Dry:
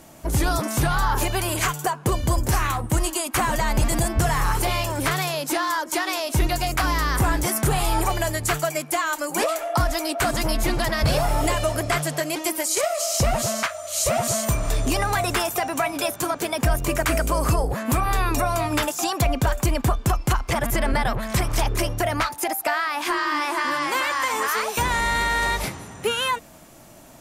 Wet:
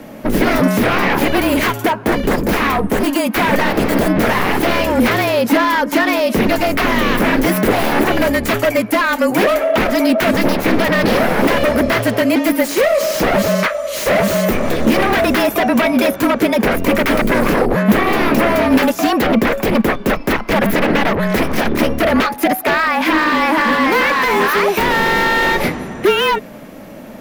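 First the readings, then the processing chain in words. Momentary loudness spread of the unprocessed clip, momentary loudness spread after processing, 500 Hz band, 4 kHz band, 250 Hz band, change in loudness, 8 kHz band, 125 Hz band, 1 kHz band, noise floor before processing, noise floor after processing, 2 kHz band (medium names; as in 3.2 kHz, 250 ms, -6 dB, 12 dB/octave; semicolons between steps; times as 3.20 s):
3 LU, 3 LU, +11.5 dB, +6.0 dB, +14.0 dB, +8.5 dB, -3.0 dB, +1.0 dB, +7.0 dB, -41 dBFS, -31 dBFS, +9.5 dB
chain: wavefolder -20.5 dBFS; graphic EQ 125/250/500/2000/8000 Hz -7/+11/+7/+6/-12 dB; frequency shift -35 Hz; trim +7.5 dB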